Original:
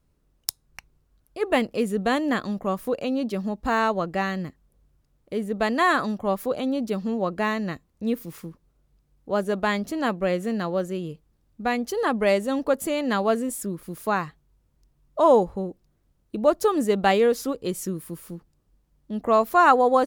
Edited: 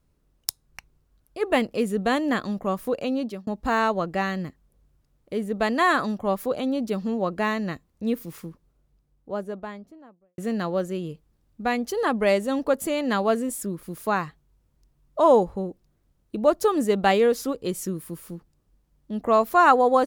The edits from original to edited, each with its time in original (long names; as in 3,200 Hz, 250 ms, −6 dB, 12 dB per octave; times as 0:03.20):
0:03.08–0:03.47: fade out equal-power
0:08.43–0:10.38: fade out and dull